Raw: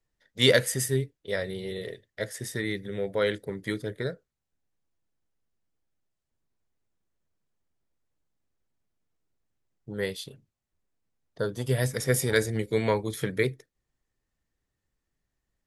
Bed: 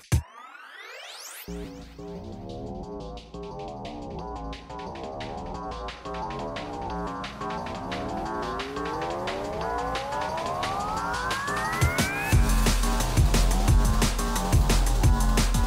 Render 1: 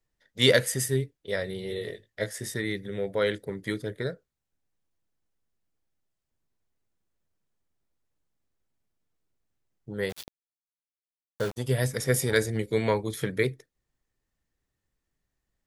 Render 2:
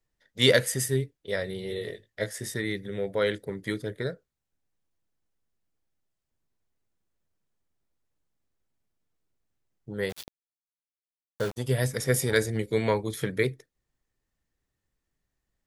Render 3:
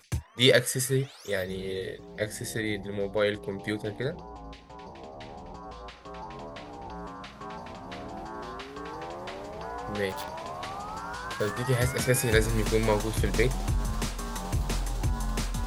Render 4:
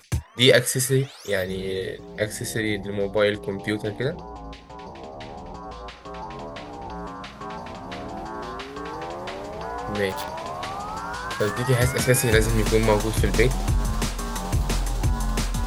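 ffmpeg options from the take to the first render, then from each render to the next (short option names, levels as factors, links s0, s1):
-filter_complex "[0:a]asettb=1/sr,asplit=3[s0][s1][s2];[s0]atrim=end=1.684[s3];[s1]atrim=start=1.68:end=2.54,asetpts=PTS-STARTPTS,afade=t=in:d=0.004:c=qsin,afade=t=out:st=0.856:d=0.004:c=qsin,asplit=2[s4][s5];[s5]adelay=19,volume=0.596[s6];[s4][s6]amix=inputs=2:normalize=0,atrim=end_sample=37926[s7];[s2]atrim=start=2.536[s8];[s3][s7]acrossfade=d=0.004:c1=hsin:c2=qsin[s9];[s9][s8]acrossfade=d=0.004:c1=qsin:c2=hsin,asplit=3[s10][s11][s12];[s10]afade=t=out:st=10.09:d=0.02[s13];[s11]aeval=exprs='val(0)*gte(abs(val(0)),0.0224)':c=same,afade=t=in:st=10.09:d=0.02,afade=t=out:st=11.56:d=0.02[s14];[s12]afade=t=in:st=11.56:d=0.02[s15];[s13][s14][s15]amix=inputs=3:normalize=0"
-af anull
-filter_complex "[1:a]volume=0.398[s0];[0:a][s0]amix=inputs=2:normalize=0"
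-af "volume=1.88,alimiter=limit=0.708:level=0:latency=1"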